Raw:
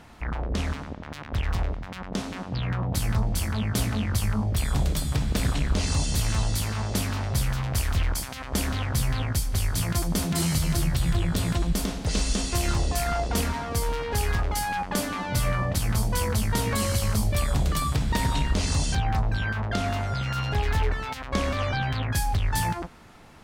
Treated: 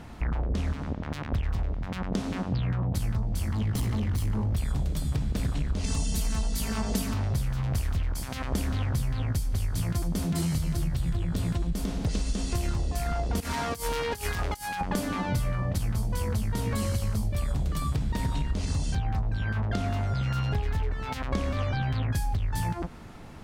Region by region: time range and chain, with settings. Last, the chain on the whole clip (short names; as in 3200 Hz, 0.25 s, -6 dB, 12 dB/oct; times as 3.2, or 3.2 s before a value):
3.52–4.53 minimum comb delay 0.98 ms + hard clip -24.5 dBFS
5.84–7.14 high shelf 5000 Hz +6.5 dB + comb 4.5 ms, depth 87%
13.4–14.81 tilt +2.5 dB/oct + negative-ratio compressor -31 dBFS, ratio -0.5
whole clip: low shelf 470 Hz +8 dB; compressor 6:1, threshold -25 dBFS